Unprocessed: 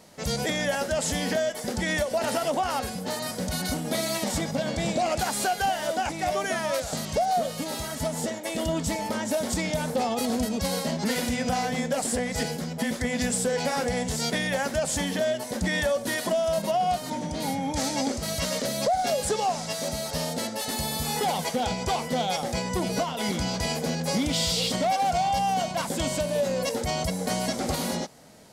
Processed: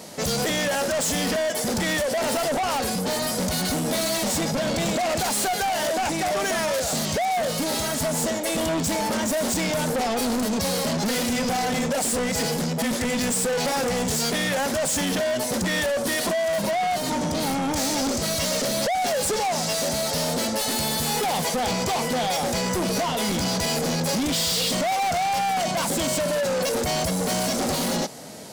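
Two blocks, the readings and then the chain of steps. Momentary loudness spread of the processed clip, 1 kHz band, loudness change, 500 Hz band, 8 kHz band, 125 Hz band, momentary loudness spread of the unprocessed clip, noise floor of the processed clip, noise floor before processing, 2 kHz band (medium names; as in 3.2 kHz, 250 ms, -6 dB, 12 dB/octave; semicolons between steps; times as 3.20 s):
2 LU, +2.0 dB, +3.5 dB, +2.5 dB, +5.5 dB, +2.0 dB, 5 LU, -27 dBFS, -35 dBFS, +3.5 dB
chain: high-pass 190 Hz 6 dB/octave; peaking EQ 1.5 kHz -4 dB 2.3 oct; in parallel at -0.5 dB: peak limiter -23.5 dBFS, peak gain reduction 7 dB; on the sum: saturation -30.5 dBFS, distortion -7 dB; trim +8.5 dB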